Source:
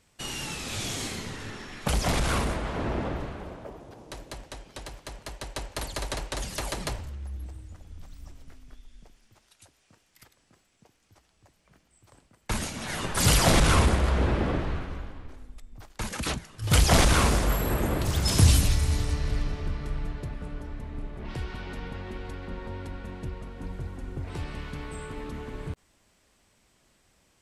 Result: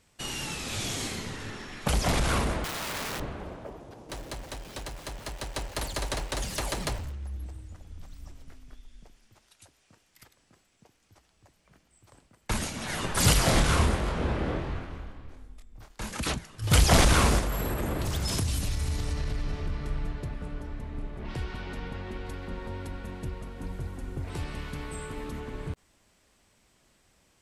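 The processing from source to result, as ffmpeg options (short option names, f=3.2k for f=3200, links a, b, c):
-filter_complex "[0:a]asettb=1/sr,asplit=3[a][b][c];[a]atrim=end=2.644[d];[b]atrim=start=2.64:end=3.2,asetpts=PTS-STARTPTS,afade=t=in:d=0.004:c=qsin,afade=t=out:st=0.556:d=0.004:c=qsin,aeval=exprs='(mod(29.9*val(0)+1,2)-1)/29.9':c=same[e];[c]atrim=start=3.196[f];[d][e]acrossfade=d=0.004:c1=hsin:c2=qsin[g];[g][f]acrossfade=d=0.004:c1=qsin:c2=hsin,asettb=1/sr,asplit=3[h][i][j];[h]atrim=end=4.094[k];[i]atrim=start=4.09:end=7.12,asetpts=PTS-STARTPTS,afade=t=in:d=0.004:c=qsin,afade=t=out:st=3.026:d=0.004:c=qsin,aeval=exprs='val(0)+0.5*0.0075*sgn(val(0))':c=same[l];[j]atrim=start=7.116[m];[k][l]acrossfade=d=0.004:c1=hsin:c2=qsin[n];[n][m]acrossfade=d=0.004:c1=qsin:c2=hsin,asettb=1/sr,asplit=3[o][p][q];[o]atrim=end=13.334[r];[p]atrim=start=13.33:end=16.16,asetpts=PTS-STARTPTS,afade=t=in:d=0.004:c=qsin,afade=t=out:st=2.826:d=0.004:c=qsin,flanger=delay=22.5:depth=5:speed=1.4[s];[q]atrim=start=16.156[t];[r][s]acrossfade=d=0.004:c1=hsin:c2=qsin[u];[u][t]acrossfade=d=0.004:c1=qsin:c2=hsin,asettb=1/sr,asplit=3[v][w][x];[v]atrim=end=17.394[y];[w]atrim=start=17.39:end=19.8,asetpts=PTS-STARTPTS,afade=t=in:d=0.004:c=qsin,afade=t=out:st=2.406:d=0.004:c=qsin,acompressor=threshold=-25dB:ratio=6:attack=3.2:release=140:knee=1:detection=peak[z];[x]atrim=start=19.796[aa];[y][z]acrossfade=d=0.004:c1=hsin:c2=qsin[ab];[ab][aa]acrossfade=d=0.004:c1=qsin:c2=hsin,asettb=1/sr,asplit=3[ac][ad][ae];[ac]atrim=end=22.264[af];[ad]atrim=start=22.26:end=25.4,asetpts=PTS-STARTPTS,afade=t=in:d=0.004:c=qsin,afade=t=out:st=3.136:d=0.004:c=qsin,highshelf=f=8.8k:g=9.5[ag];[ae]atrim=start=25.396[ah];[af][ag]acrossfade=d=0.004:c1=hsin:c2=qsin[ai];[ai][ah]acrossfade=d=0.004:c1=qsin:c2=hsin"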